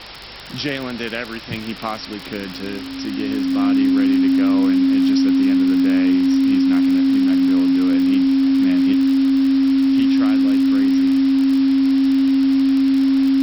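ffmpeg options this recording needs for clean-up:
ffmpeg -i in.wav -af "adeclick=threshold=4,bandreject=frequency=50.4:width_type=h:width=4,bandreject=frequency=100.8:width_type=h:width=4,bandreject=frequency=151.2:width_type=h:width=4,bandreject=frequency=270:width=30,afwtdn=0.028" out.wav

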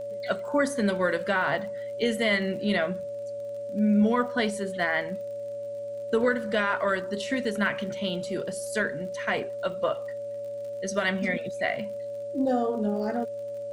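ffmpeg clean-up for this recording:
ffmpeg -i in.wav -af "adeclick=threshold=4,bandreject=frequency=113.6:width_type=h:width=4,bandreject=frequency=227.2:width_type=h:width=4,bandreject=frequency=340.8:width_type=h:width=4,bandreject=frequency=454.4:width_type=h:width=4,bandreject=frequency=570:width=30,agate=range=-21dB:threshold=-27dB" out.wav

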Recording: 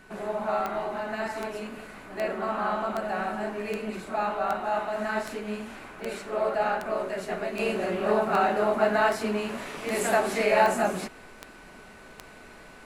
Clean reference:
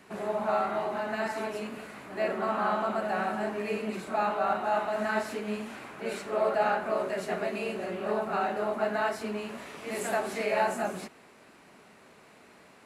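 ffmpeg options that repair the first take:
ffmpeg -i in.wav -af "adeclick=threshold=4,bandreject=frequency=1500:width=30,agate=range=-21dB:threshold=-40dB,asetnsamples=nb_out_samples=441:pad=0,asendcmd='7.59 volume volume -6dB',volume=0dB" out.wav

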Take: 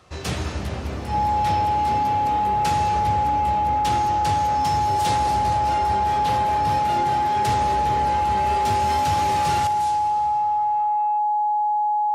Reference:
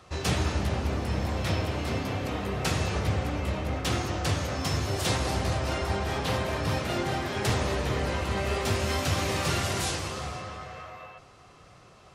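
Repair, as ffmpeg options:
ffmpeg -i in.wav -af "bandreject=frequency=840:width=30,asetnsamples=nb_out_samples=441:pad=0,asendcmd='9.67 volume volume 8dB',volume=0dB" out.wav

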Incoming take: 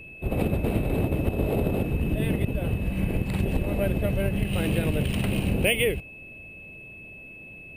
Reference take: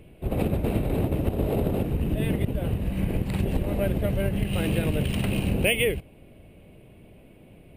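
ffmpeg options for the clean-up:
ffmpeg -i in.wav -af "bandreject=frequency=2600:width=30" out.wav

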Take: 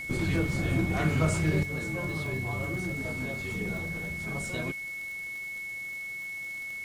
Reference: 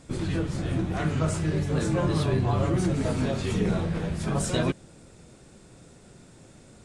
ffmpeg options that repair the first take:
ffmpeg -i in.wav -af "adeclick=threshold=4,bandreject=frequency=2200:width=30,afwtdn=0.0022,asetnsamples=nb_out_samples=441:pad=0,asendcmd='1.63 volume volume 9.5dB',volume=0dB" out.wav

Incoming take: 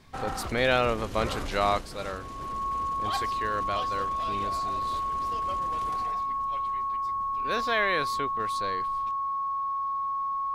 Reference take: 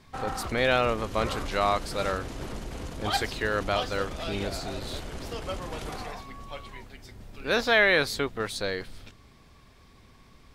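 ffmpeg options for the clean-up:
ffmpeg -i in.wav -af "bandreject=frequency=1100:width=30,asetnsamples=nb_out_samples=441:pad=0,asendcmd='1.81 volume volume 6dB',volume=0dB" out.wav

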